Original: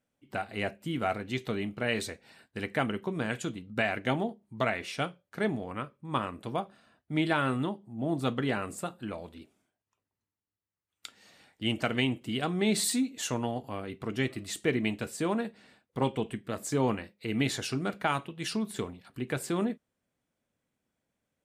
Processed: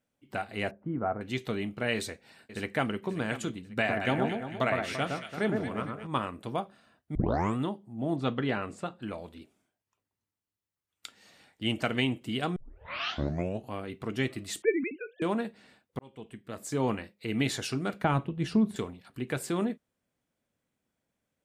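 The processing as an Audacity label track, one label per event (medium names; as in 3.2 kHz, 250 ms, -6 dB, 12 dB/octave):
0.710000	1.210000	low-pass 1.3 kHz 24 dB/octave
1.950000	2.990000	echo throw 540 ms, feedback 35%, level -13.5 dB
3.750000	6.070000	echo whose repeats swap between lows and highs 113 ms, split 1.6 kHz, feedback 65%, level -3 dB
7.150000	7.150000	tape start 0.41 s
8.160000	9.020000	low-pass 4.6 kHz
12.560000	12.560000	tape start 1.16 s
14.620000	15.220000	formants replaced by sine waves
15.990000	16.970000	fade in
18.040000	18.760000	tilt EQ -3.5 dB/octave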